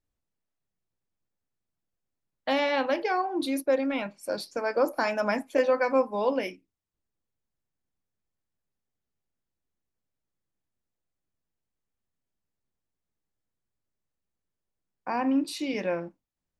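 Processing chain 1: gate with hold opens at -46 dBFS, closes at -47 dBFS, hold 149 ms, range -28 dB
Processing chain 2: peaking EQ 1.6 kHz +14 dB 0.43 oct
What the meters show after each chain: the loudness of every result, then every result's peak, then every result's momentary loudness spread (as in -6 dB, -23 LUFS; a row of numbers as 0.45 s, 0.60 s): -28.0 LUFS, -25.5 LUFS; -11.5 dBFS, -9.0 dBFS; 9 LU, 9 LU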